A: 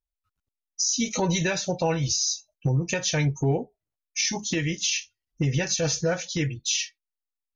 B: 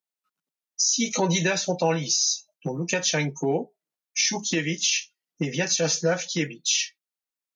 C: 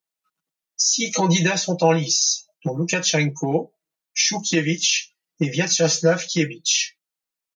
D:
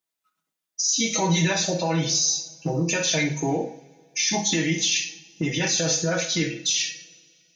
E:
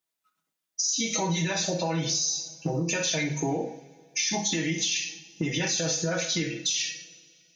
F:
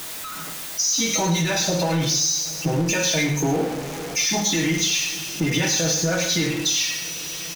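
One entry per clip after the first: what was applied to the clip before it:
elliptic high-pass 160 Hz; low shelf 420 Hz -3 dB; gain +3.5 dB
comb 6.2 ms, depth 60%; gain +2.5 dB
limiter -15.5 dBFS, peak gain reduction 11 dB; reverb, pre-delay 3 ms, DRR 2.5 dB
compressor, threshold -24 dBFS, peak gain reduction 7 dB
zero-crossing step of -29.5 dBFS; echo 0.103 s -10 dB; shoebox room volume 1900 m³, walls furnished, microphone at 0.42 m; gain +3 dB

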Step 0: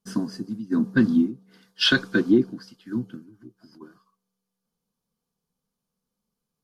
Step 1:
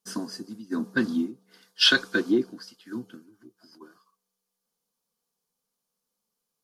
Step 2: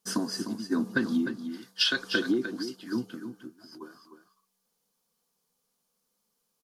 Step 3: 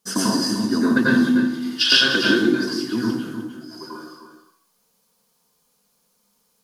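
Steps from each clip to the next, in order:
tone controls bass -14 dB, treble +5 dB
compressor 16:1, threshold -27 dBFS, peak gain reduction 13.5 dB; echo 0.303 s -9.5 dB; gain +4.5 dB
plate-style reverb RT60 0.6 s, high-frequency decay 0.95×, pre-delay 80 ms, DRR -6 dB; gain +5 dB

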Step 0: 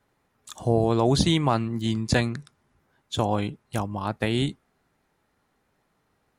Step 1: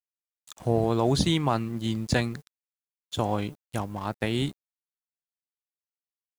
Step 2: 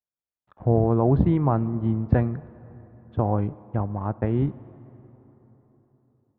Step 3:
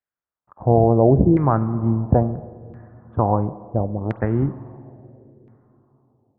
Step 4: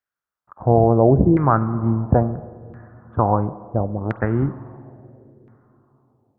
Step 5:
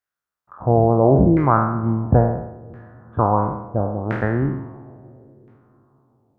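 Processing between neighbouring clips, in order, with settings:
in parallel at -8 dB: requantised 8-bit, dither triangular; on the sum: crossover distortion -41.5 dBFS; gain -5 dB
Bessel low-pass 1000 Hz, order 4; bell 82 Hz +6 dB 1.5 oct; plate-style reverb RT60 4 s, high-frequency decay 0.55×, DRR 18 dB; gain +3 dB
wow and flutter 28 cents; LFO low-pass saw down 0.73 Hz 420–1900 Hz; spring tank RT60 1.8 s, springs 44 ms, chirp 35 ms, DRR 17.5 dB; gain +2.5 dB
bell 1400 Hz +8 dB 0.76 oct
spectral trails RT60 0.81 s; gain -1.5 dB

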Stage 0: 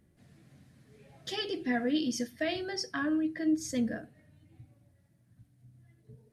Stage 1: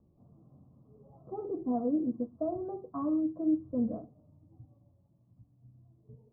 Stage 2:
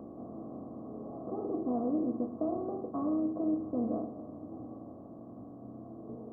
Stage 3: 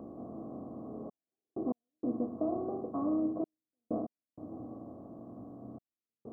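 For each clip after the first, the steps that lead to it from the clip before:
steep low-pass 1200 Hz 96 dB/oct
per-bin compression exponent 0.4; gain -5 dB
step gate "xxxxxxx...x..xx" 96 bpm -60 dB

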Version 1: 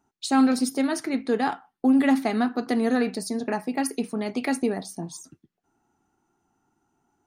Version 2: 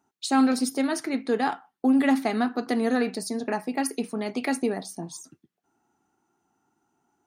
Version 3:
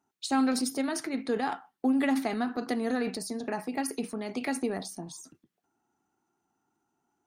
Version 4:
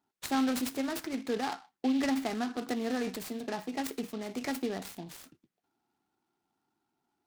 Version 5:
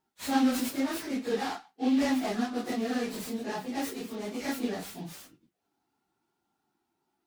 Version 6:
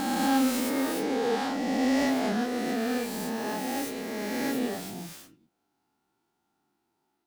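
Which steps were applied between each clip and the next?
HPF 170 Hz 6 dB/oct
transient shaper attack +3 dB, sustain +7 dB; gain -6.5 dB
noise-modulated delay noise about 3000 Hz, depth 0.049 ms; gain -3 dB
phase scrambler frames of 0.1 s; gain +2 dB
spectral swells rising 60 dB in 2.84 s; gain -2 dB

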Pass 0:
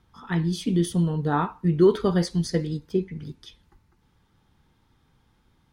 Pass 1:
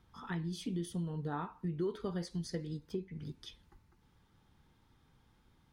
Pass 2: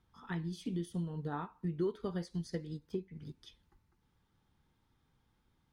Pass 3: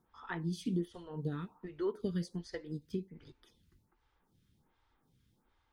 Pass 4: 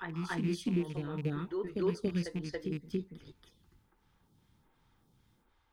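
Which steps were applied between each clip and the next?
compressor 2.5:1, threshold -36 dBFS, peak gain reduction 15.5 dB; gain -4 dB
upward expander 1.5:1, over -49 dBFS; gain +2 dB
photocell phaser 1.3 Hz; gain +4.5 dB
rattling part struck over -37 dBFS, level -41 dBFS; reverse echo 0.281 s -4 dB; gain +2.5 dB

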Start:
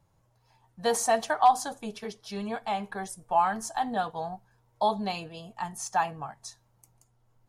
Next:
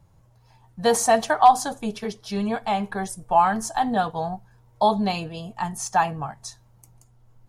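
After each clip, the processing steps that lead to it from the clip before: low shelf 210 Hz +8 dB; gain +5.5 dB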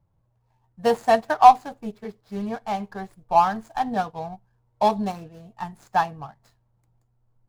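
median filter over 15 samples; upward expander 1.5:1, over -39 dBFS; gain +3.5 dB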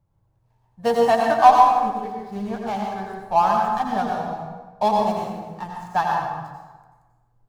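plate-style reverb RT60 1.3 s, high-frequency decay 0.65×, pre-delay 75 ms, DRR -1 dB; gain -1 dB

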